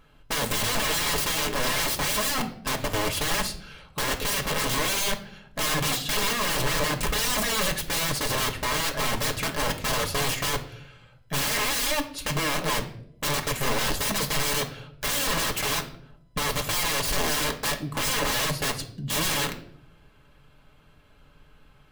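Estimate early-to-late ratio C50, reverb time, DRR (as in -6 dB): 12.5 dB, 0.70 s, 2.5 dB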